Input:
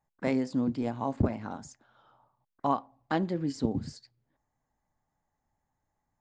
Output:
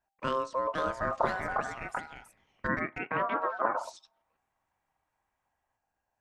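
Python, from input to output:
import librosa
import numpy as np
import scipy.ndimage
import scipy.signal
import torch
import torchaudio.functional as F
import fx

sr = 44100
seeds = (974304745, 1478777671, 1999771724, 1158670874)

y = x * np.sin(2.0 * np.pi * 790.0 * np.arange(len(x)) / sr)
y = fx.cabinet(y, sr, low_hz=120.0, low_slope=24, high_hz=2100.0, hz=(250.0, 390.0, 850.0), db=(6, -9, 5), at=(2.67, 3.83), fade=0.02)
y = fx.echo_pitch(y, sr, ms=547, semitones=3, count=2, db_per_echo=-3.0)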